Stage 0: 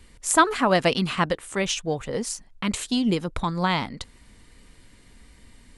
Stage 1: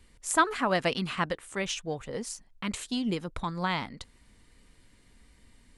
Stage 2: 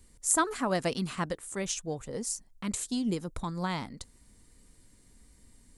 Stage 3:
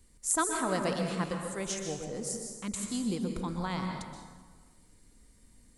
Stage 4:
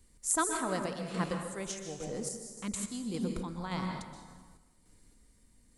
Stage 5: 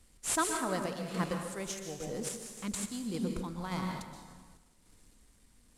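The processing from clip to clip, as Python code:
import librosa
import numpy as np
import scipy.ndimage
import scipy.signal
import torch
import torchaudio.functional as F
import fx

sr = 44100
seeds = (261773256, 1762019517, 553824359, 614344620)

y1 = fx.dynamic_eq(x, sr, hz=1700.0, q=1.0, threshold_db=-36.0, ratio=4.0, max_db=3)
y1 = F.gain(torch.from_numpy(y1), -7.5).numpy()
y2 = fx.curve_eq(y1, sr, hz=(300.0, 2900.0, 7300.0), db=(0, -8, 6))
y3 = fx.rev_plate(y2, sr, seeds[0], rt60_s=1.5, hf_ratio=0.6, predelay_ms=110, drr_db=2.5)
y3 = F.gain(torch.from_numpy(y3), -3.0).numpy()
y4 = fx.tremolo_random(y3, sr, seeds[1], hz=3.5, depth_pct=55)
y5 = fx.cvsd(y4, sr, bps=64000)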